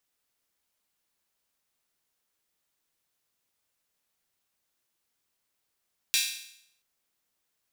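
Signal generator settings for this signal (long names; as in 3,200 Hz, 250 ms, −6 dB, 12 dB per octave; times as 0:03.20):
open synth hi-hat length 0.68 s, high-pass 2,900 Hz, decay 0.71 s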